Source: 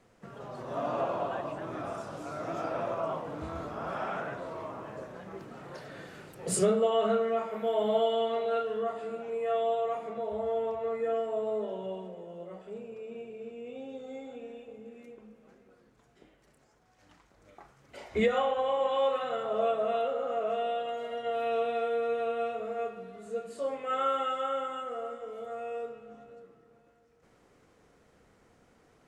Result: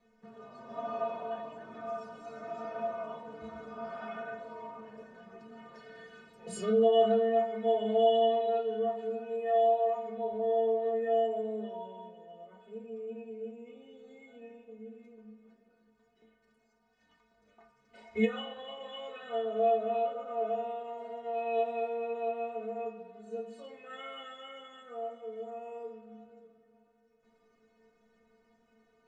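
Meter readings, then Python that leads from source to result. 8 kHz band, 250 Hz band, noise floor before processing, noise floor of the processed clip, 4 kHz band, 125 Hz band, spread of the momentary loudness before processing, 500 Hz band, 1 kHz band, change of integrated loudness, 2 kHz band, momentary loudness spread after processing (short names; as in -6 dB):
under -10 dB, -0.5 dB, -65 dBFS, -70 dBFS, -2.0 dB, n/a, 17 LU, -0.5 dB, -1.0 dB, 0.0 dB, -4.0 dB, 23 LU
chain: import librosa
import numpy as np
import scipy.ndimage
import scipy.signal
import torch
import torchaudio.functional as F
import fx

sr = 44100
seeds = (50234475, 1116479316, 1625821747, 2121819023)

y = fx.air_absorb(x, sr, metres=83.0)
y = fx.stiff_resonator(y, sr, f0_hz=220.0, decay_s=0.26, stiffness=0.008)
y = y * 10.0 ** (7.0 / 20.0)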